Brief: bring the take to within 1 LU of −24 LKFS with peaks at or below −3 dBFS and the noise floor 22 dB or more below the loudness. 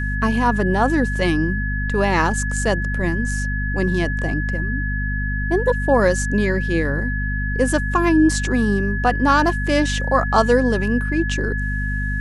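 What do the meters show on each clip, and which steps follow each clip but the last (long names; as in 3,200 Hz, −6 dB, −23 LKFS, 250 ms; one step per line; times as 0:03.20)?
mains hum 50 Hz; hum harmonics up to 250 Hz; level of the hum −21 dBFS; interfering tone 1,700 Hz; level of the tone −26 dBFS; integrated loudness −19.5 LKFS; sample peak −3.5 dBFS; target loudness −24.0 LKFS
→ hum removal 50 Hz, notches 5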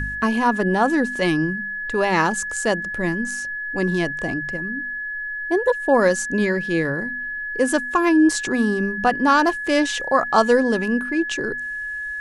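mains hum none found; interfering tone 1,700 Hz; level of the tone −26 dBFS
→ notch filter 1,700 Hz, Q 30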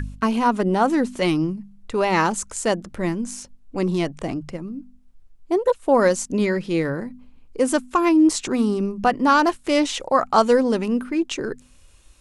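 interfering tone none found; integrated loudness −21.0 LKFS; sample peak −5.0 dBFS; target loudness −24.0 LKFS
→ level −3 dB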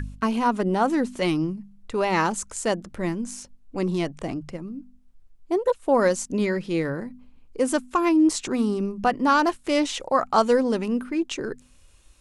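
integrated loudness −24.0 LKFS; sample peak −8.0 dBFS; background noise floor −54 dBFS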